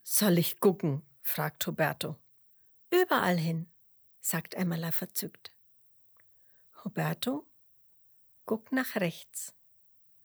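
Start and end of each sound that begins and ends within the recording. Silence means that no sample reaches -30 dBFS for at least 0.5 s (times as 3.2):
2.92–3.59
4.25–5.46
6.86–7.37
8.49–9.44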